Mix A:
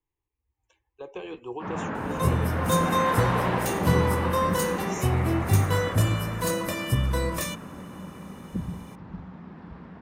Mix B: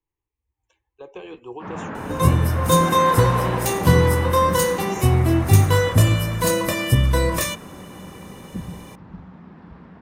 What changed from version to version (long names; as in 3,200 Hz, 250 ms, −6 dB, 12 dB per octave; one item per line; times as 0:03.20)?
second sound +7.5 dB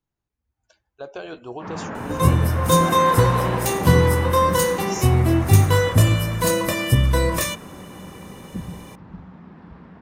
speech: remove phaser with its sweep stopped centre 960 Hz, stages 8